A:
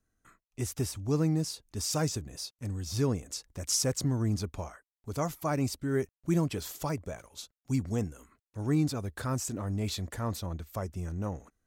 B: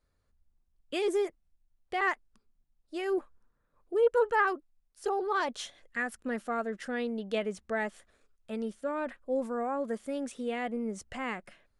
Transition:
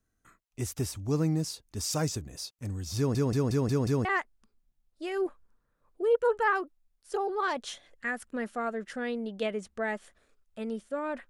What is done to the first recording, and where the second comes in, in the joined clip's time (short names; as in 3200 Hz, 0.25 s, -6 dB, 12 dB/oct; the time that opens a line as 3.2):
A
2.97 stutter in place 0.18 s, 6 plays
4.05 switch to B from 1.97 s